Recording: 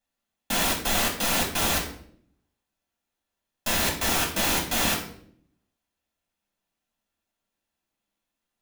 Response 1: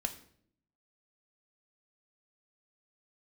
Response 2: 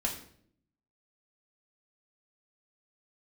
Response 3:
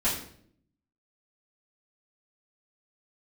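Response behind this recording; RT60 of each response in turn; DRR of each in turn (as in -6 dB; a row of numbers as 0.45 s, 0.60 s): 2; 0.65 s, 0.60 s, 0.60 s; 6.0 dB, -1.0 dB, -9.5 dB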